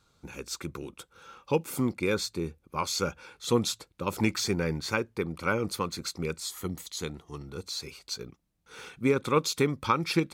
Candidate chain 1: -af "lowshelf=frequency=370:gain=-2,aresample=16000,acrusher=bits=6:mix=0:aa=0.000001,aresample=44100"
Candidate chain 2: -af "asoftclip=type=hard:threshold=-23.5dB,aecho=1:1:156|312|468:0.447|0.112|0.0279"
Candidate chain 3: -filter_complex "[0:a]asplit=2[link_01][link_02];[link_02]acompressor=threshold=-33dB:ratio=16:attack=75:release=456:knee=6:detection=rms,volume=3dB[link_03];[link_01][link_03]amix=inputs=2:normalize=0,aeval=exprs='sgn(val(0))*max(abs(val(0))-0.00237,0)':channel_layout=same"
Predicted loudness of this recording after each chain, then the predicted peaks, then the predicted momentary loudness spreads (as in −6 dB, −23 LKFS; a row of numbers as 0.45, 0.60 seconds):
−31.5, −32.0, −27.0 LKFS; −10.5, −19.5, −6.5 dBFS; 15, 13, 13 LU